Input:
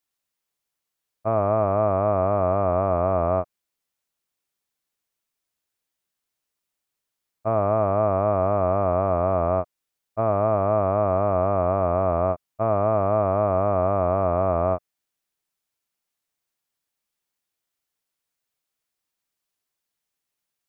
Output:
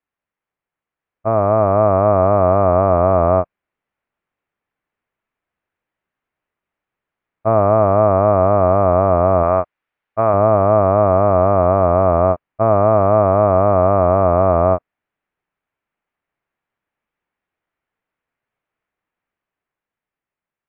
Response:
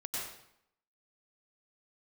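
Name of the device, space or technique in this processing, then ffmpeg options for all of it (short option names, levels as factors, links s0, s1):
action camera in a waterproof case: -filter_complex "[0:a]asettb=1/sr,asplit=3[s0][s1][s2];[s0]atrim=end=9.434[s3];[s1]atrim=start=9.43:end=10.34,asetpts=PTS-STARTPTS,afade=t=in:d=0.004:c=qsin,afade=t=out:st=0.906:d=0.004:c=qsin,tiltshelf=f=790:g=-4.5[s4];[s2]atrim=start=10.336[s5];[s3][s4]acrossfade=d=0.004:c1=hsin:c2=qsin[s6];[s6][s5]acrossfade=d=0.004:c1=qsin:c2=hsin,lowpass=f=2300:w=0.5412,lowpass=f=2300:w=1.3066,dynaudnorm=f=160:g=17:m=1.78,volume=1.5" -ar 24000 -c:a aac -b:a 96k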